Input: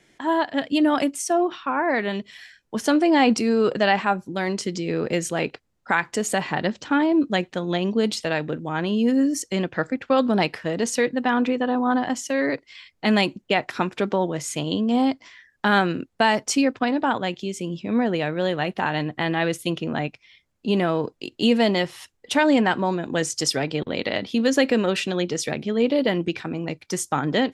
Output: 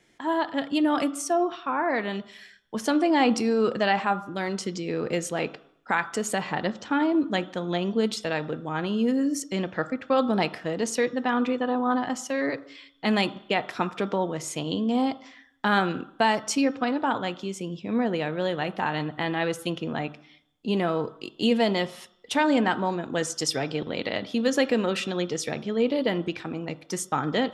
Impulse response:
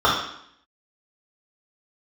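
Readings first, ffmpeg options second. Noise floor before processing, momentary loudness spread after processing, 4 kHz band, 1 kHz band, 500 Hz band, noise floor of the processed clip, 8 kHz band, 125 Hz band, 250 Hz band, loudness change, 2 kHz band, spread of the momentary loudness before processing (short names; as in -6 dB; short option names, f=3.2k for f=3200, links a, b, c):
-66 dBFS, 8 LU, -4.0 dB, -2.5 dB, -3.5 dB, -57 dBFS, -4.0 dB, -4.0 dB, -4.0 dB, -3.5 dB, -4.0 dB, 8 LU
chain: -filter_complex "[0:a]asplit=2[a][b];[1:a]atrim=start_sample=2205[c];[b][c]afir=irnorm=-1:irlink=0,volume=-33dB[d];[a][d]amix=inputs=2:normalize=0,volume=-4dB"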